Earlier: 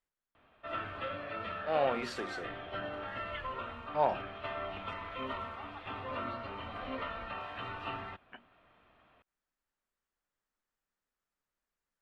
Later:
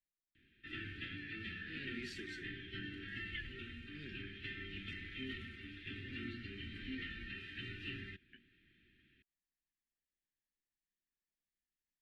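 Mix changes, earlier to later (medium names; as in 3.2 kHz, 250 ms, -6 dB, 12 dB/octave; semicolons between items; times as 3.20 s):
speech -6.0 dB; master: add Chebyshev band-stop 370–1700 Hz, order 4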